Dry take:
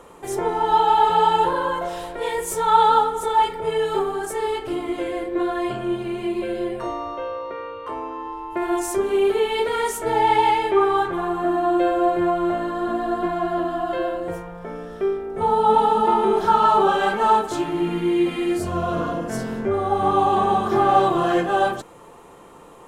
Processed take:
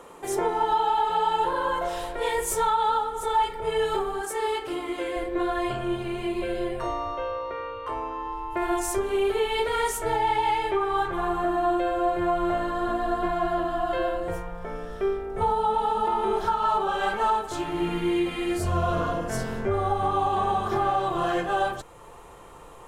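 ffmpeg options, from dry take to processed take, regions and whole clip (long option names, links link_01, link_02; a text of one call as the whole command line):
ffmpeg -i in.wav -filter_complex "[0:a]asettb=1/sr,asplit=3[link_01][link_02][link_03];[link_01]atrim=end=4.214[link_04];[link_02]atrim=start=4.21:end=5.16,asetpts=PTS-STARTPTS,afade=type=in:duration=0.004:curve=qsin,afade=type=out:start_time=0.946:duration=0.004:curve=qsin,highpass=60,equalizer=frequency=87:width_type=o:width=1.5:gain=-13.5,bandreject=frequency=660:width=8.1[link_05];[link_03]atrim=start=5.156[link_06];[link_04][link_05]acrossfade=duration=0.004:curve1=hsin:curve2=qsin[link_07];[link_07][link_06]acrossfade=duration=0.004:curve1=qsin:curve2=hsin,lowshelf=frequency=140:gain=-8.5,alimiter=limit=-14.5dB:level=0:latency=1:release=499,asubboost=boost=9:cutoff=75" out.wav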